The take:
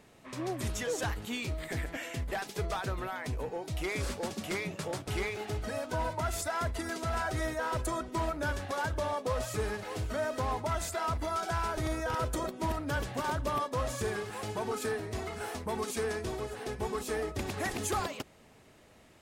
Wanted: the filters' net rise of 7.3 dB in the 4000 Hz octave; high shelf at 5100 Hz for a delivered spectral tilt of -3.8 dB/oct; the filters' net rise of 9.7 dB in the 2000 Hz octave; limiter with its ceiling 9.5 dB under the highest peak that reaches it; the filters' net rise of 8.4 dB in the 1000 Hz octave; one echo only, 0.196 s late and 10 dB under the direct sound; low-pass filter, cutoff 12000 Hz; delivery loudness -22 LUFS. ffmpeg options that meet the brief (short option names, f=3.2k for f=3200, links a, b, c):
-af "lowpass=12k,equalizer=f=1k:t=o:g=7.5,equalizer=f=2k:t=o:g=8.5,equalizer=f=4k:t=o:g=7.5,highshelf=f=5.1k:g=-3.5,alimiter=level_in=0.5dB:limit=-24dB:level=0:latency=1,volume=-0.5dB,aecho=1:1:196:0.316,volume=11dB"